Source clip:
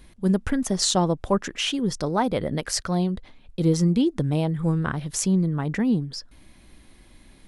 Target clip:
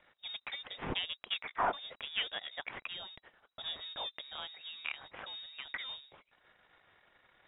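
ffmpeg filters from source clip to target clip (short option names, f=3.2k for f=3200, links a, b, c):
-af "aeval=exprs='if(lt(val(0),0),0.447*val(0),val(0))':c=same,aderivative,lowpass=f=3.3k:t=q:w=0.5098,lowpass=f=3.3k:t=q:w=0.6013,lowpass=f=3.3k:t=q:w=0.9,lowpass=f=3.3k:t=q:w=2.563,afreqshift=-3900,volume=8.5dB"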